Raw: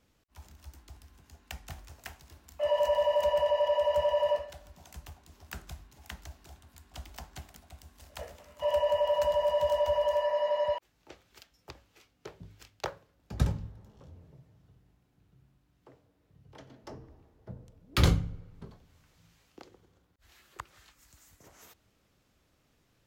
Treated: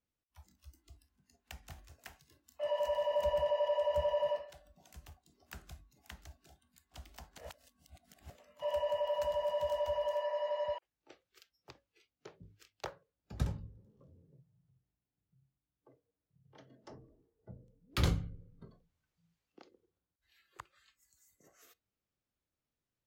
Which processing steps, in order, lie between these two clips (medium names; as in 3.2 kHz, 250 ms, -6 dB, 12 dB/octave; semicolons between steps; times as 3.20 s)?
spectral noise reduction 15 dB; 3.11–4.29 s: bass shelf 290 Hz +9.5 dB; 7.38–8.30 s: reverse; trim -7 dB